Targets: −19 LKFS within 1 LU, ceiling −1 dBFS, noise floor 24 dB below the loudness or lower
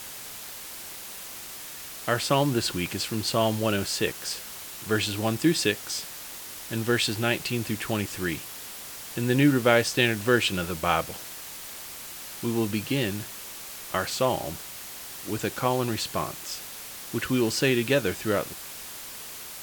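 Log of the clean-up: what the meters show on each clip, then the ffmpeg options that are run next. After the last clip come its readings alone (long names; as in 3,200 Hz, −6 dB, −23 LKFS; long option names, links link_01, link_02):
background noise floor −40 dBFS; target noise floor −52 dBFS; integrated loudness −27.5 LKFS; sample peak −4.5 dBFS; target loudness −19.0 LKFS
→ -af "afftdn=noise_reduction=12:noise_floor=-40"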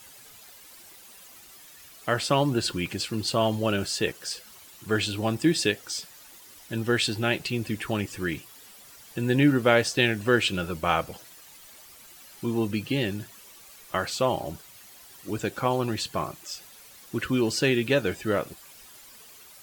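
background noise floor −50 dBFS; target noise floor −51 dBFS
→ -af "afftdn=noise_reduction=6:noise_floor=-50"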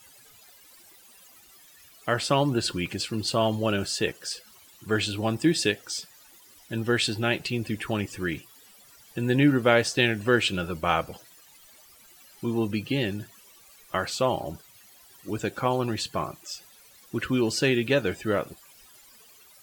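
background noise floor −54 dBFS; integrated loudness −26.5 LKFS; sample peak −5.0 dBFS; target loudness −19.0 LKFS
→ -af "volume=7.5dB,alimiter=limit=-1dB:level=0:latency=1"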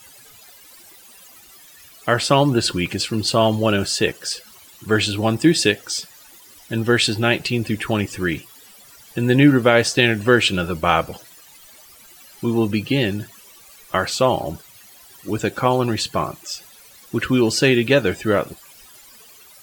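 integrated loudness −19.0 LKFS; sample peak −1.0 dBFS; background noise floor −47 dBFS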